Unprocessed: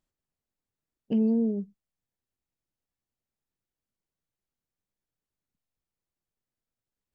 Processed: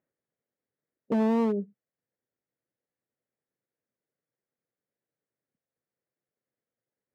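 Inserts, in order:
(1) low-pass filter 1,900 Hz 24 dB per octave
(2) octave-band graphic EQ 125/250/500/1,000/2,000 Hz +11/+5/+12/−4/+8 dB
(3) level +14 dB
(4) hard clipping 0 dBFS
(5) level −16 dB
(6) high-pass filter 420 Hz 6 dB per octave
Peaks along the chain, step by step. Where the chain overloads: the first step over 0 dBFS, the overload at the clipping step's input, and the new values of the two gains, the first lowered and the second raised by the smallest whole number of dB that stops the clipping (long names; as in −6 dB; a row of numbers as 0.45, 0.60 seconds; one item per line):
−17.0, −7.0, +7.0, 0.0, −16.0, −15.5 dBFS
step 3, 7.0 dB
step 3 +7 dB, step 5 −9 dB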